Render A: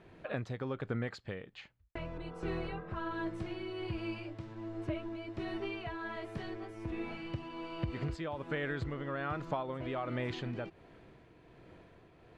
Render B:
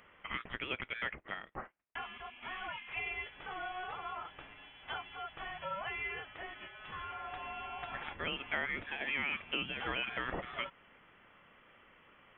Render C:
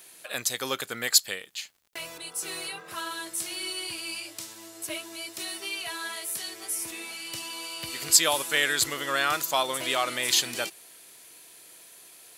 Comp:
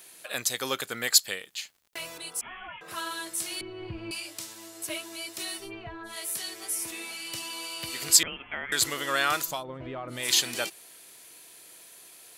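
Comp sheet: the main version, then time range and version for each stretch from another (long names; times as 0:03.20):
C
0:02.41–0:02.81: punch in from B
0:03.61–0:04.11: punch in from A
0:05.64–0:06.11: punch in from A, crossfade 0.16 s
0:08.23–0:08.72: punch in from B
0:09.53–0:10.19: punch in from A, crossfade 0.24 s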